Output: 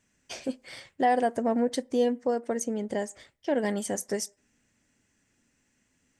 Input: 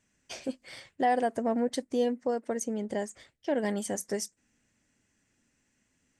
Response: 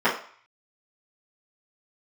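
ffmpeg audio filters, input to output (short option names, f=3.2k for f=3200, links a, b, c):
-filter_complex "[0:a]asplit=2[a][b];[1:a]atrim=start_sample=2205[c];[b][c]afir=irnorm=-1:irlink=0,volume=-38dB[d];[a][d]amix=inputs=2:normalize=0,volume=2dB"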